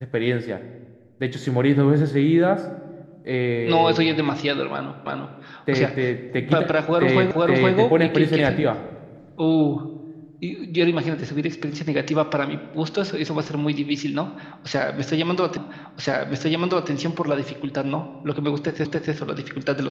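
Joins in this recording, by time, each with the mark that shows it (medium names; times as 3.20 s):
5.06 s: repeat of the last 0.34 s
7.31 s: repeat of the last 0.47 s
15.57 s: repeat of the last 1.33 s
18.85 s: repeat of the last 0.28 s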